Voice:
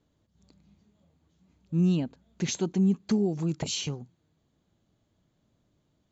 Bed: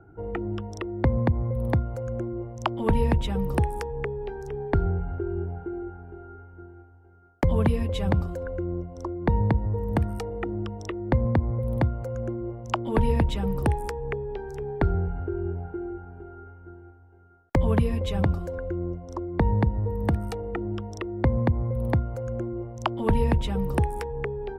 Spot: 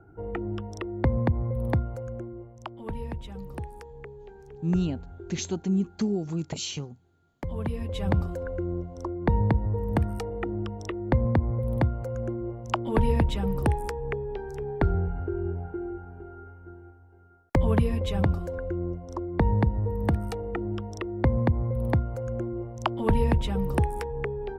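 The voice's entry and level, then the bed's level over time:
2.90 s, -1.5 dB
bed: 1.84 s -1.5 dB
2.70 s -12.5 dB
7.40 s -12.5 dB
8.16 s -0.5 dB

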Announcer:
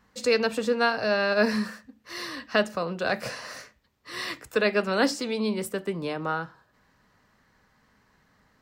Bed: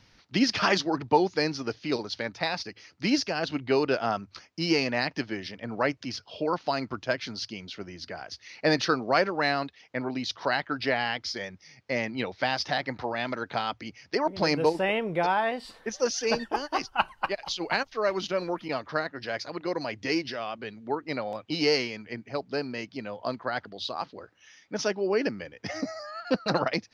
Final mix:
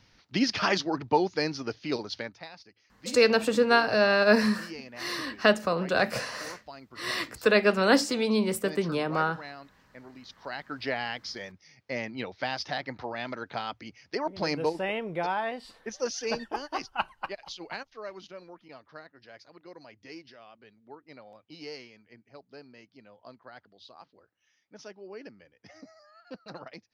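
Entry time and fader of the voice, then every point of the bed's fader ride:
2.90 s, +2.0 dB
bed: 2.19 s -2 dB
2.49 s -17 dB
10.21 s -17 dB
10.84 s -4.5 dB
17.01 s -4.5 dB
18.51 s -17.5 dB

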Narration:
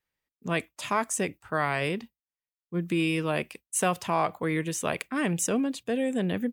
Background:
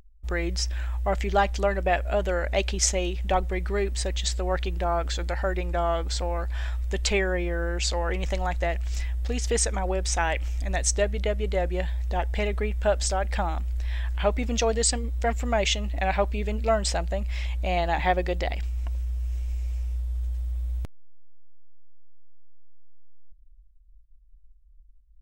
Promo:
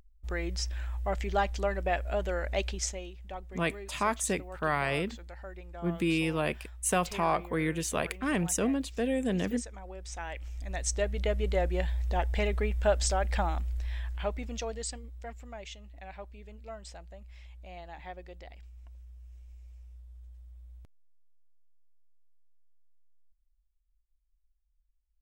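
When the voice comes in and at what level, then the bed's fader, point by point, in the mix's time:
3.10 s, -2.0 dB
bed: 2.66 s -6 dB
3.16 s -17.5 dB
9.90 s -17.5 dB
11.35 s -2.5 dB
13.49 s -2.5 dB
15.65 s -20.5 dB

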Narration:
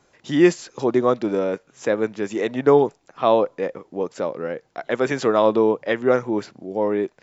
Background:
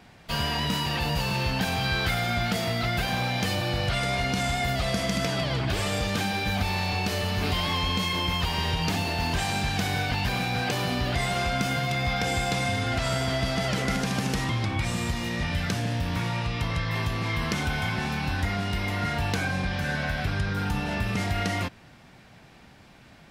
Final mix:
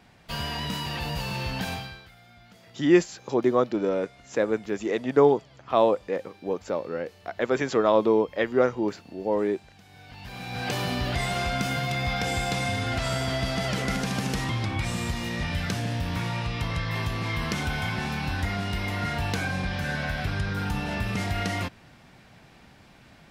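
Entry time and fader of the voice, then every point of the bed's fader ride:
2.50 s, -3.5 dB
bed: 1.73 s -4 dB
2.09 s -26.5 dB
9.85 s -26.5 dB
10.72 s -1 dB

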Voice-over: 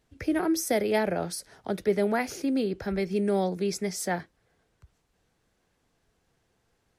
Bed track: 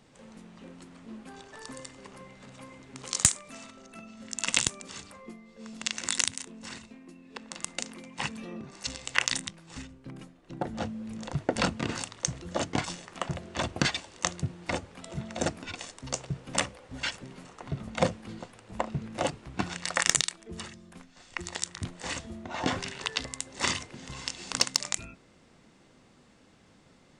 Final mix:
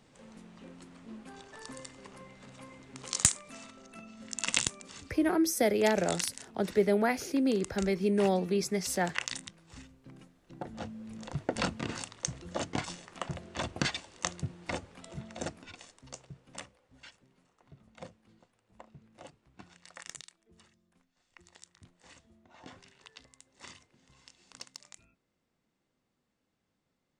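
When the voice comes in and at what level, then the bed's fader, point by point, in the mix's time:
4.90 s, -1.0 dB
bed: 4.49 s -2.5 dB
5.32 s -8.5 dB
10.52 s -8.5 dB
11.34 s -4.5 dB
14.95 s -4.5 dB
17.24 s -21.5 dB

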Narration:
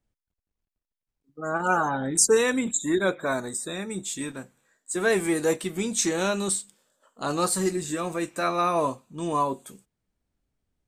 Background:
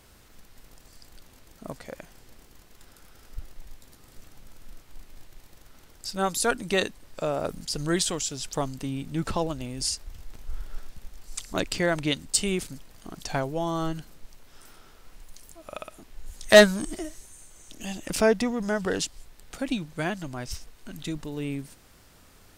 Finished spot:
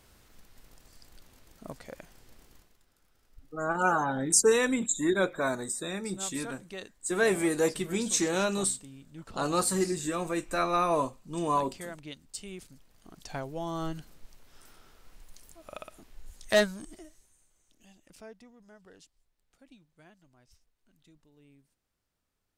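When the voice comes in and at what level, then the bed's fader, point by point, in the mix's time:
2.15 s, -2.5 dB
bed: 2.55 s -4.5 dB
2.84 s -17 dB
12.35 s -17 dB
13.85 s -5 dB
16.07 s -5 dB
18.34 s -28 dB

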